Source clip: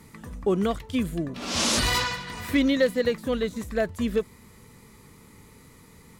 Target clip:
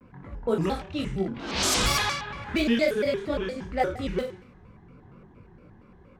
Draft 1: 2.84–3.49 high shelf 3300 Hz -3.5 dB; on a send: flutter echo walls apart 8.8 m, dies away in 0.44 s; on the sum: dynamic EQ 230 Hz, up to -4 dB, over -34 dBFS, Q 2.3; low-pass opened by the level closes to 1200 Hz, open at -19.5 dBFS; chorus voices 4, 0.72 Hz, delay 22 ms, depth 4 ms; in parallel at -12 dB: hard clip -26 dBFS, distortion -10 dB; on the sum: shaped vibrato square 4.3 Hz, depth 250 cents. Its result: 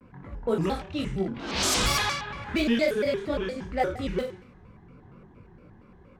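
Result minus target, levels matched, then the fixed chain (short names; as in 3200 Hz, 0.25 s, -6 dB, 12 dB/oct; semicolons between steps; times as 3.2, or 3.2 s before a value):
hard clip: distortion +23 dB
2.84–3.49 high shelf 3300 Hz -3.5 dB; on a send: flutter echo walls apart 8.8 m, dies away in 0.44 s; on the sum: dynamic EQ 230 Hz, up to -4 dB, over -34 dBFS, Q 2.3; low-pass opened by the level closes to 1200 Hz, open at -19.5 dBFS; chorus voices 4, 0.72 Hz, delay 22 ms, depth 4 ms; in parallel at -12 dB: hard clip -16 dBFS, distortion -32 dB; on the sum: shaped vibrato square 4.3 Hz, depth 250 cents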